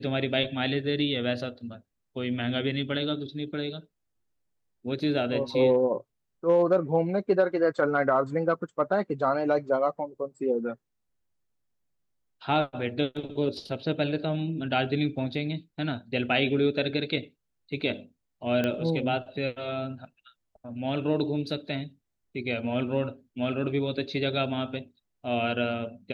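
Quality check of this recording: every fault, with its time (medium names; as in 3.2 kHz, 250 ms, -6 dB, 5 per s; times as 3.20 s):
18.64 s: pop -15 dBFS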